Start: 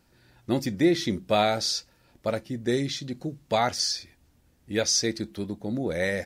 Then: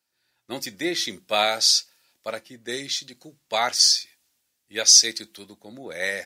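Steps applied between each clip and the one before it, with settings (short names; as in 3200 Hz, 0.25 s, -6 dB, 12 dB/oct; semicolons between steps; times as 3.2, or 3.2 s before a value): HPF 810 Hz 6 dB/oct; high shelf 2100 Hz +9 dB; three-band expander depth 40%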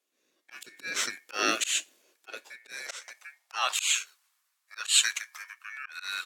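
ring modulator 2000 Hz; auto swell 0.19 s; high-pass sweep 310 Hz -> 1100 Hz, 1.8–4.08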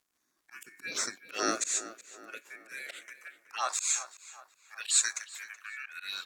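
envelope phaser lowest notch 490 Hz, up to 3000 Hz, full sweep at -28 dBFS; crackle 130/s -62 dBFS; tape echo 0.375 s, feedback 50%, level -13 dB, low-pass 2900 Hz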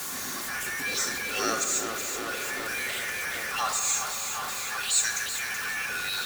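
zero-crossing step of -26.5 dBFS; notch comb 320 Hz; reverb RT60 3.6 s, pre-delay 4 ms, DRR 6.5 dB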